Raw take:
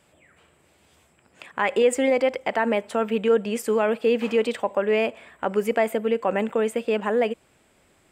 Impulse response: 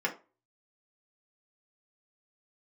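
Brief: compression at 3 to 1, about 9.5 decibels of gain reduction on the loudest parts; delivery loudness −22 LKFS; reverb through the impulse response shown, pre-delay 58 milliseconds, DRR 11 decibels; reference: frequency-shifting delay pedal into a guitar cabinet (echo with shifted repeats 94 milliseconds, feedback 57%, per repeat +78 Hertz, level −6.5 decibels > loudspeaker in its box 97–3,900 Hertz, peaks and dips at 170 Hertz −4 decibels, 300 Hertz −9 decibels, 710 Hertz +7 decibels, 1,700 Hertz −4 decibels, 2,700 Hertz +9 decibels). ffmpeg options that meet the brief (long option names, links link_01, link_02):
-filter_complex "[0:a]acompressor=threshold=-28dB:ratio=3,asplit=2[link_01][link_02];[1:a]atrim=start_sample=2205,adelay=58[link_03];[link_02][link_03]afir=irnorm=-1:irlink=0,volume=-19dB[link_04];[link_01][link_04]amix=inputs=2:normalize=0,asplit=8[link_05][link_06][link_07][link_08][link_09][link_10][link_11][link_12];[link_06]adelay=94,afreqshift=78,volume=-6.5dB[link_13];[link_07]adelay=188,afreqshift=156,volume=-11.4dB[link_14];[link_08]adelay=282,afreqshift=234,volume=-16.3dB[link_15];[link_09]adelay=376,afreqshift=312,volume=-21.1dB[link_16];[link_10]adelay=470,afreqshift=390,volume=-26dB[link_17];[link_11]adelay=564,afreqshift=468,volume=-30.9dB[link_18];[link_12]adelay=658,afreqshift=546,volume=-35.8dB[link_19];[link_05][link_13][link_14][link_15][link_16][link_17][link_18][link_19]amix=inputs=8:normalize=0,highpass=97,equalizer=frequency=170:width_type=q:width=4:gain=-4,equalizer=frequency=300:width_type=q:width=4:gain=-9,equalizer=frequency=710:width_type=q:width=4:gain=7,equalizer=frequency=1700:width_type=q:width=4:gain=-4,equalizer=frequency=2700:width_type=q:width=4:gain=9,lowpass=frequency=3900:width=0.5412,lowpass=frequency=3900:width=1.3066,volume=6dB"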